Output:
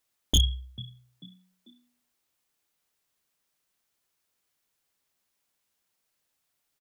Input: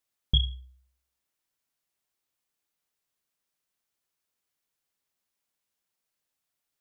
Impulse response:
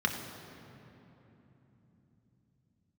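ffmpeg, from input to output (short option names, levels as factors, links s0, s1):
-filter_complex "[0:a]asplit=4[s0][s1][s2][s3];[s1]adelay=442,afreqshift=60,volume=0.0708[s4];[s2]adelay=884,afreqshift=120,volume=0.0275[s5];[s3]adelay=1326,afreqshift=180,volume=0.0107[s6];[s0][s4][s5][s6]amix=inputs=4:normalize=0,aeval=exprs='0.106*(abs(mod(val(0)/0.106+3,4)-2)-1)':c=same,volume=1.88"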